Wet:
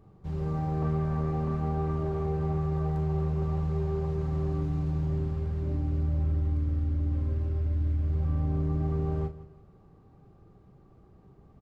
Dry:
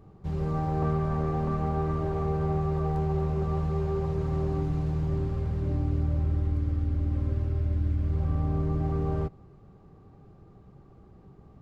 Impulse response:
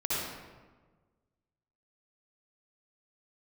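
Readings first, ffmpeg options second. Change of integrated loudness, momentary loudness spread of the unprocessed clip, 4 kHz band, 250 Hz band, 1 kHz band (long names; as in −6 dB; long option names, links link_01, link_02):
−1.0 dB, 2 LU, can't be measured, −1.0 dB, −4.5 dB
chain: -filter_complex "[0:a]asplit=2[link_01][link_02];[link_02]adelay=38,volume=-9dB[link_03];[link_01][link_03]amix=inputs=2:normalize=0,asplit=2[link_04][link_05];[link_05]aecho=0:1:168|336|504:0.15|0.0509|0.0173[link_06];[link_04][link_06]amix=inputs=2:normalize=0,volume=-4dB"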